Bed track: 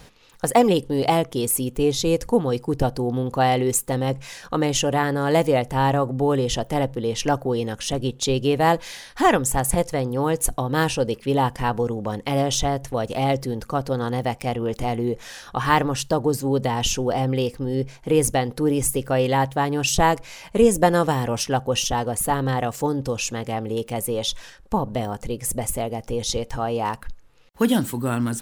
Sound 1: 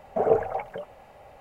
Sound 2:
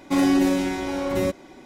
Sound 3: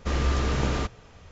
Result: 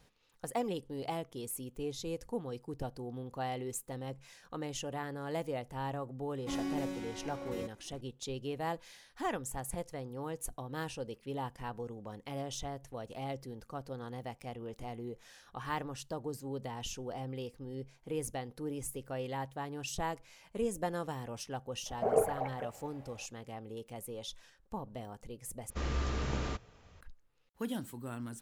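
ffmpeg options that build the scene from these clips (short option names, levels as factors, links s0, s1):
-filter_complex "[0:a]volume=0.119,asplit=2[s0][s1];[s0]atrim=end=25.704[s2];[3:a]atrim=end=1.31,asetpts=PTS-STARTPTS,volume=0.335[s3];[s1]atrim=start=27.006[s4];[2:a]atrim=end=1.65,asetpts=PTS-STARTPTS,volume=0.133,afade=t=in:d=0.004:c=hsin,afade=t=out:st=1.646:d=0.004:c=hsin,adelay=6360[s5];[1:a]atrim=end=1.4,asetpts=PTS-STARTPTS,volume=0.447,afade=t=in:d=0.004:c=hsin,afade=t=out:st=1.396:d=0.004:c=hsin,adelay=21860[s6];[s2][s3]acrossfade=d=0.004:c1=hsin:c2=hsin[s7];[s7][s4]acrossfade=d=0.004:c1=hsin:c2=hsin[s8];[s8][s5][s6]amix=inputs=3:normalize=0"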